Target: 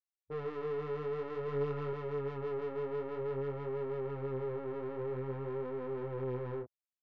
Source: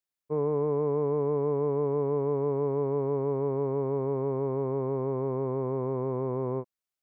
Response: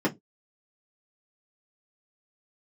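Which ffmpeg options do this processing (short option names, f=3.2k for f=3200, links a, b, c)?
-filter_complex "[0:a]afwtdn=0.0158,asoftclip=type=tanh:threshold=-32dB,flanger=delay=19.5:depth=6.5:speed=0.52,asettb=1/sr,asplit=3[a][b][c];[a]atrim=end=1.454[d];[b]atrim=start=1.45:end=1.93,asetpts=PTS-STARTPTS,afade=t=in:d=0.004:c=qsin,afade=t=out:st=0.476:d=0.004:c=qsin,asplit=2[e][f];[f]adelay=28,volume=-4dB[g];[e][g]amix=inputs=2:normalize=0,atrim=end_sample=21168[h];[c]atrim=start=1.926[i];[d][h]acrossfade=d=0.004:c1=hsin:c2=qsin[j];[j][i]acrossfade=d=0.004:c1=qsin:c2=hsin"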